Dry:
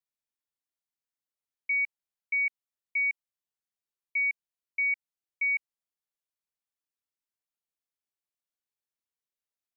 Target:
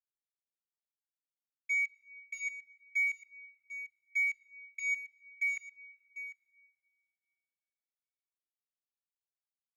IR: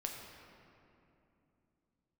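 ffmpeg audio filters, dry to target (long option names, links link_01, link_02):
-filter_complex "[0:a]aemphasis=mode=reproduction:type=75fm,afwtdn=0.00447,asplit=3[link_01][link_02][link_03];[link_01]afade=type=out:start_time=1.73:duration=0.02[link_04];[link_02]bandreject=frequency=2000:width=8.4,afade=type=in:start_time=1.73:duration=0.02,afade=type=out:start_time=2.34:duration=0.02[link_05];[link_03]afade=type=in:start_time=2.34:duration=0.02[link_06];[link_04][link_05][link_06]amix=inputs=3:normalize=0,aeval=exprs='sgn(val(0))*max(abs(val(0))-0.00237,0)':channel_layout=same,adynamicsmooth=sensitivity=5.5:basefreq=2200,aecho=1:1:747:0.211,asplit=2[link_07][link_08];[1:a]atrim=start_sample=2205[link_09];[link_08][link_09]afir=irnorm=-1:irlink=0,volume=-14dB[link_10];[link_07][link_10]amix=inputs=2:normalize=0,asplit=2[link_11][link_12];[link_12]adelay=7.8,afreqshift=2.5[link_13];[link_11][link_13]amix=inputs=2:normalize=1"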